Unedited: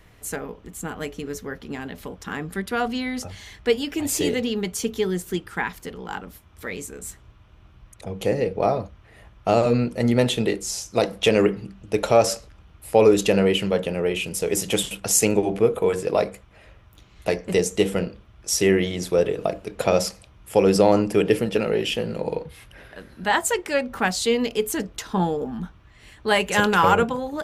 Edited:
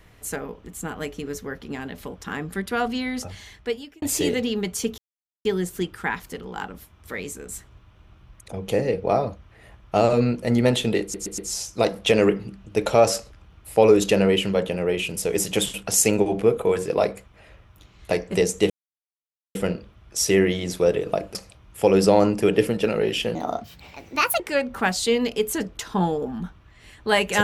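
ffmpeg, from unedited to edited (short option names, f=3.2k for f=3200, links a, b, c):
-filter_complex "[0:a]asplit=10[a][b][c][d][e][f][g][h][i][j];[a]atrim=end=4.02,asetpts=PTS-STARTPTS,afade=t=out:st=3.33:d=0.69[k];[b]atrim=start=4.02:end=4.98,asetpts=PTS-STARTPTS,afade=t=in:d=0.004:c=hsin,afade=t=out:st=0.956:d=0.004:c=hsin,apad=pad_dur=0.47[l];[c]atrim=start=4.98:end=10.672,asetpts=PTS-STARTPTS,afade=t=in:d=0.004:c=hsin[m];[d]atrim=start=10.548:end=10.672[n];[e]atrim=start=10.548:end=10.672[o];[f]atrim=start=10.548:end=17.87,asetpts=PTS-STARTPTS,afade=t=out:st=7.318:d=0.004:c=hsin,apad=pad_dur=0.85[p];[g]atrim=start=17.87:end=19.672,asetpts=PTS-STARTPTS,afade=t=in:d=0.004:c=hsin[q];[h]atrim=start=20.068:end=22.074[r];[i]atrim=start=22.07:end=23.59,asetpts=PTS-STARTPTS,asetrate=63945,aresample=44100[s];[j]atrim=start=23.586[t];[k][l][m]concat=n=3:v=0:a=1[u];[u][n]acrossfade=d=0.004:c1=hsin:c2=hsin[v];[v][o]acrossfade=d=0.004:c1=hsin:c2=hsin[w];[p][q]concat=n=2:v=0:a=1[x];[w][x]acrossfade=d=0.004:c1=hsin:c2=hsin[y];[y][r]acrossfade=d=0.004:c1=hsin:c2=hsin[z];[z][s]acrossfade=d=0.004:c1=hsin:c2=hsin[aa];[aa][t]acrossfade=d=0.004:c1=hsin:c2=hsin"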